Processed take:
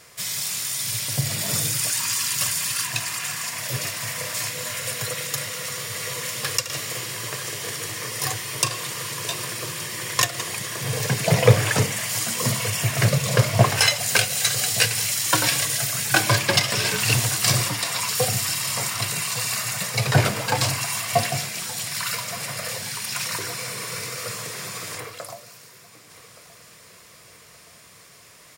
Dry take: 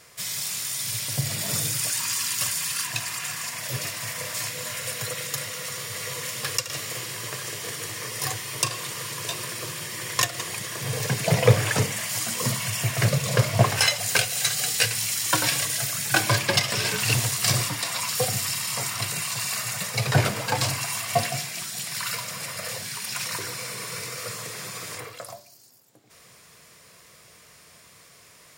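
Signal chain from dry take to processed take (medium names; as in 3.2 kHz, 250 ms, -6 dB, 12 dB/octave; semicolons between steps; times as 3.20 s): feedback delay 1172 ms, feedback 46%, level -18 dB; trim +2.5 dB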